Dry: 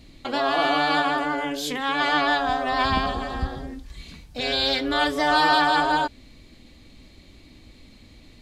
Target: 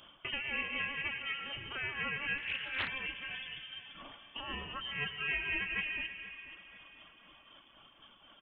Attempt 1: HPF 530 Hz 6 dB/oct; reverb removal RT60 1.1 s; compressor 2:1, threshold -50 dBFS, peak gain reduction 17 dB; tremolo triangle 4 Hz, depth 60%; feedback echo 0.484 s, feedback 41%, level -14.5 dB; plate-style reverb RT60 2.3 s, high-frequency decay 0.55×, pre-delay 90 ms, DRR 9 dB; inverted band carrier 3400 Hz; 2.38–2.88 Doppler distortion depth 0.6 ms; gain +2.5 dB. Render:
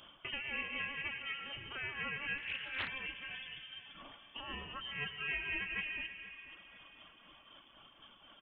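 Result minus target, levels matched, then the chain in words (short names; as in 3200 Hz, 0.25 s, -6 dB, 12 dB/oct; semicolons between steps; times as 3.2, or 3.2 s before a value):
compressor: peak gain reduction +3.5 dB
HPF 530 Hz 6 dB/oct; reverb removal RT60 1.1 s; compressor 2:1, threshold -43.5 dBFS, peak gain reduction 14 dB; tremolo triangle 4 Hz, depth 60%; feedback echo 0.484 s, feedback 41%, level -14.5 dB; plate-style reverb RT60 2.3 s, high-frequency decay 0.55×, pre-delay 90 ms, DRR 9 dB; inverted band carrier 3400 Hz; 2.38–2.88 Doppler distortion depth 0.6 ms; gain +2.5 dB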